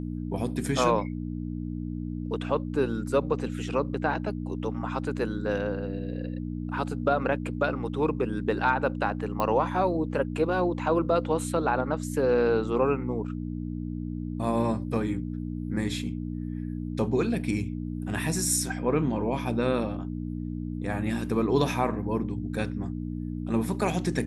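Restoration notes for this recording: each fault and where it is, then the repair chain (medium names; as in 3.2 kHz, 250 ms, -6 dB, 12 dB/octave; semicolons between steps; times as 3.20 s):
hum 60 Hz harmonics 5 -33 dBFS
9.40 s: pop -15 dBFS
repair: de-click; de-hum 60 Hz, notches 5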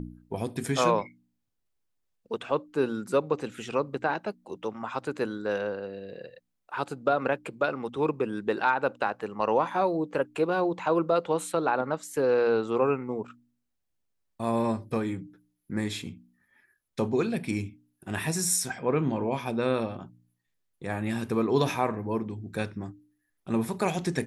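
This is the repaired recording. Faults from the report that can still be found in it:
nothing left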